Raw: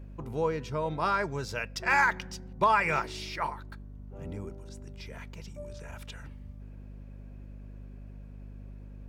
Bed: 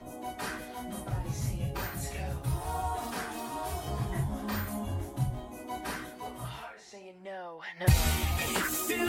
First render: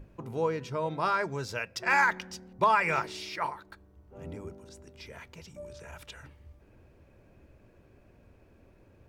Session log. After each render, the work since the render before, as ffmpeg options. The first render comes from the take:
-af "bandreject=f=50:t=h:w=6,bandreject=f=100:t=h:w=6,bandreject=f=150:t=h:w=6,bandreject=f=200:t=h:w=6,bandreject=f=250:t=h:w=6"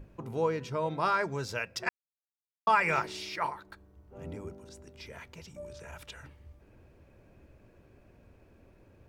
-filter_complex "[0:a]asplit=3[s0][s1][s2];[s0]atrim=end=1.89,asetpts=PTS-STARTPTS,afade=t=out:st=1.886:d=0.004:c=hsin[s3];[s1]atrim=start=1.89:end=2.67,asetpts=PTS-STARTPTS,volume=0[s4];[s2]atrim=start=2.67,asetpts=PTS-STARTPTS,afade=t=in:d=0.004:c=hsin[s5];[s3][s4][s5]concat=n=3:v=0:a=1"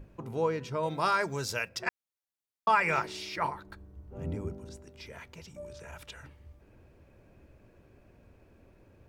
-filter_complex "[0:a]asettb=1/sr,asplit=3[s0][s1][s2];[s0]atrim=end=0.834[s3];[s1]atrim=start=0.83:end=1.69,asetpts=PTS-STARTPTS,afade=t=in:d=0.004:c=qsin,afade=t=out:st=0.856:d=0.004:c=qsin,highshelf=f=5000:g=11.5[s4];[s2]atrim=start=1.686[s5];[s3][s4]acrossfade=d=0.004:c1=hsin:c2=qsin[s6];[s6][s5]acrossfade=d=0.004:c1=qsin:c2=hsin,asettb=1/sr,asplit=3[s7][s8][s9];[s7]atrim=end=3.364[s10];[s8]atrim=start=3.36:end=4.77,asetpts=PTS-STARTPTS,afade=t=in:d=0.004:c=qsin,afade=t=out:st=1.406:d=0.004:c=qsin,lowshelf=f=300:g=9[s11];[s9]atrim=start=4.766[s12];[s10][s11]acrossfade=d=0.004:c1=hsin:c2=qsin[s13];[s13][s12]acrossfade=d=0.004:c1=qsin:c2=hsin"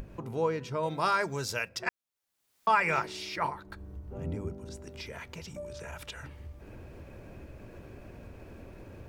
-af "acompressor=mode=upward:threshold=0.0178:ratio=2.5"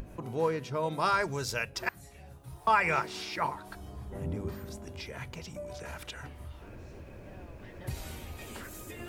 -filter_complex "[1:a]volume=0.178[s0];[0:a][s0]amix=inputs=2:normalize=0"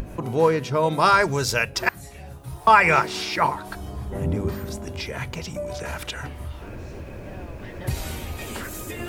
-af "volume=3.35"

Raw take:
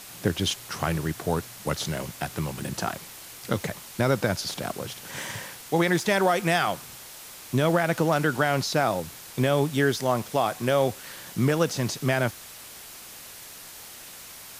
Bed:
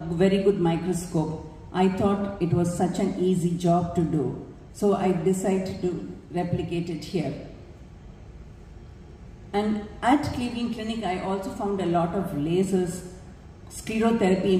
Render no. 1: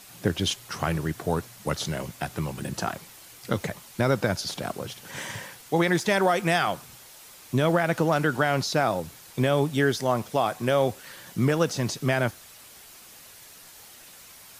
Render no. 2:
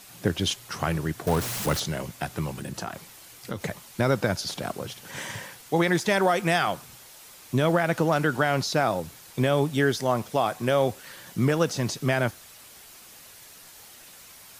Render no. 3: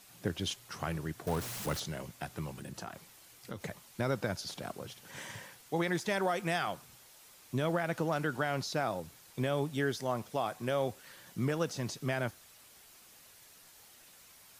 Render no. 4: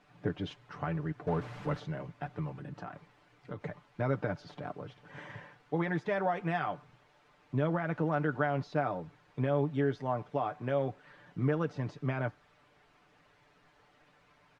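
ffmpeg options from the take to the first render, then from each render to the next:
-af "afftdn=nr=6:nf=-44"
-filter_complex "[0:a]asettb=1/sr,asplit=3[s0][s1][s2];[s0]atrim=end=1.274[s3];[s1]atrim=start=1.27:end=1.8,asetpts=PTS-STARTPTS,afade=t=in:d=0.004:c=qsin,afade=t=out:st=0.526:d=0.004:c=qsin,aeval=exprs='val(0)+0.5*0.0473*sgn(val(0))':c=same[s4];[s2]atrim=start=1.796[s5];[s3][s4]acrossfade=d=0.004:c1=hsin:c2=qsin[s6];[s6][s5]acrossfade=d=0.004:c1=qsin:c2=hsin,asettb=1/sr,asplit=3[s7][s8][s9];[s7]atrim=end=2.544[s10];[s8]atrim=start=2.54:end=3.62,asetpts=PTS-STARTPTS,afade=t=in:d=0.004:c=qsin,afade=t=out:st=1.076:d=0.004:c=qsin,acompressor=threshold=0.0251:ratio=2:attack=3.2:release=140:knee=1:detection=peak[s11];[s9]atrim=start=3.616[s12];[s10][s11]acrossfade=d=0.004:c1=hsin:c2=qsin[s13];[s13][s12]acrossfade=d=0.004:c1=qsin:c2=hsin"
-af "volume=0.335"
-af "lowpass=1800,aecho=1:1:6.8:0.57"

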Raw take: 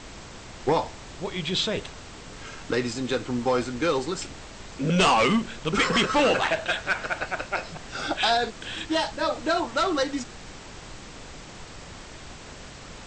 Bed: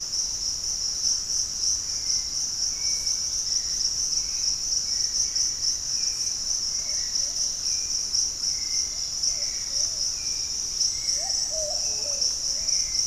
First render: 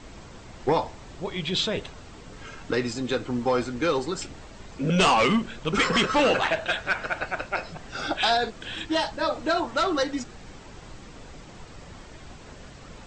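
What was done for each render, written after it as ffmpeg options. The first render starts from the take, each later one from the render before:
-af "afftdn=nr=7:nf=-43"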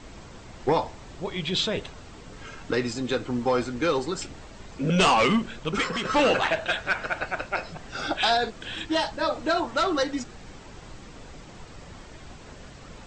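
-filter_complex "[0:a]asplit=2[s0][s1];[s0]atrim=end=6.05,asetpts=PTS-STARTPTS,afade=t=out:st=5.56:d=0.49:silence=0.316228[s2];[s1]atrim=start=6.05,asetpts=PTS-STARTPTS,afade=t=in:d=0.004:c=hsin:silence=0.316228[s3];[s2][s3]concat=n=2:v=0:a=1"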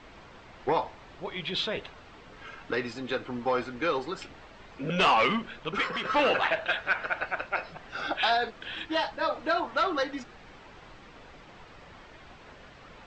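-af "lowpass=3200,lowshelf=f=410:g=-10.5"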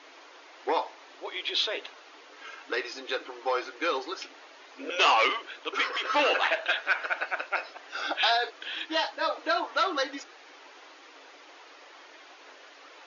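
-af "aemphasis=mode=production:type=bsi,afftfilt=real='re*between(b*sr/4096,260,6900)':imag='im*between(b*sr/4096,260,6900)':win_size=4096:overlap=0.75"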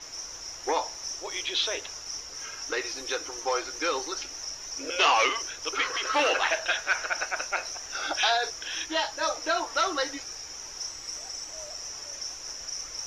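-filter_complex "[1:a]volume=0.251[s0];[0:a][s0]amix=inputs=2:normalize=0"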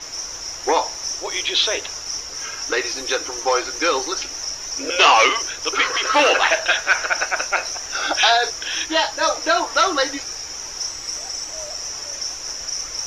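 -af "volume=2.82"

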